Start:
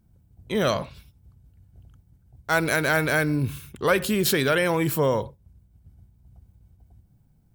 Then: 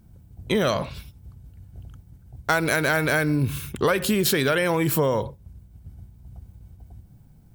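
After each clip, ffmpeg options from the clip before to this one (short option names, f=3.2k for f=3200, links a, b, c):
-af "acompressor=threshold=-28dB:ratio=5,volume=9dB"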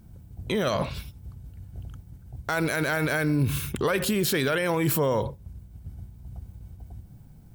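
-af "alimiter=limit=-18.5dB:level=0:latency=1:release=50,volume=2.5dB"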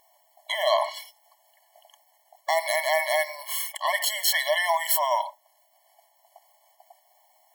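-af "afftfilt=real='re*eq(mod(floor(b*sr/1024/570),2),1)':imag='im*eq(mod(floor(b*sr/1024/570),2),1)':win_size=1024:overlap=0.75,volume=8dB"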